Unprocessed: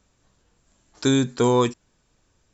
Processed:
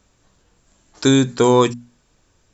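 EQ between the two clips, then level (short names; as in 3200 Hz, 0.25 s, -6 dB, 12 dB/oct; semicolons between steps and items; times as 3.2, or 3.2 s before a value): notches 60/120/180/240 Hz; +5.5 dB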